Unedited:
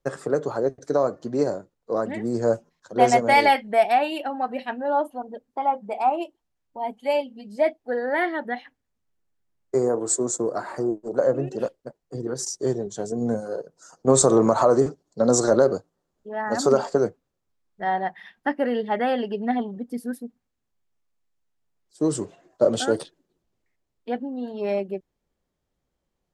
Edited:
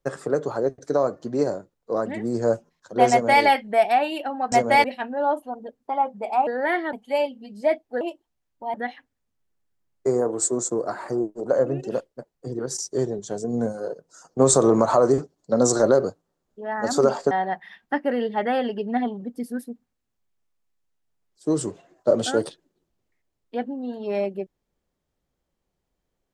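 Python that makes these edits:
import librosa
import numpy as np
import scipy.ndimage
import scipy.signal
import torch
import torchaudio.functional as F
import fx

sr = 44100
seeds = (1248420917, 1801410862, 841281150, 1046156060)

y = fx.edit(x, sr, fx.duplicate(start_s=3.1, length_s=0.32, to_s=4.52),
    fx.swap(start_s=6.15, length_s=0.73, other_s=7.96, other_length_s=0.46),
    fx.cut(start_s=16.99, length_s=0.86), tone=tone)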